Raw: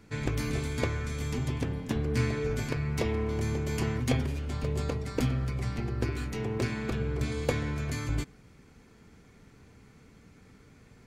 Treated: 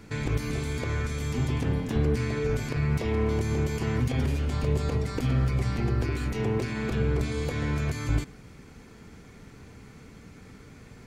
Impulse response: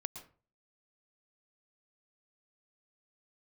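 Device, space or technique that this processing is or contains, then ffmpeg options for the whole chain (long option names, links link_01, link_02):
de-esser from a sidechain: -filter_complex "[0:a]asplit=2[link_01][link_02];[link_02]highpass=frequency=5800:poles=1,apad=whole_len=488064[link_03];[link_01][link_03]sidechaincompress=threshold=-51dB:ratio=5:attack=1.7:release=40,volume=7.5dB"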